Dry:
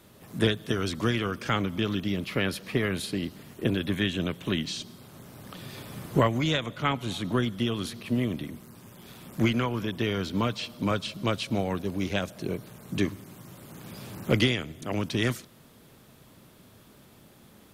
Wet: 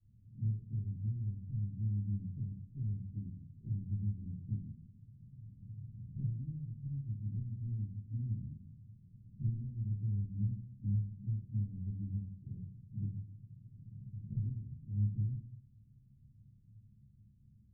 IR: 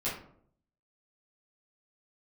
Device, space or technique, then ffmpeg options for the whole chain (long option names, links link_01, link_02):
club heard from the street: -filter_complex "[0:a]alimiter=limit=-18dB:level=0:latency=1:release=480,lowpass=frequency=140:width=0.5412,lowpass=frequency=140:width=1.3066[link_01];[1:a]atrim=start_sample=2205[link_02];[link_01][link_02]afir=irnorm=-1:irlink=0,volume=-8.5dB"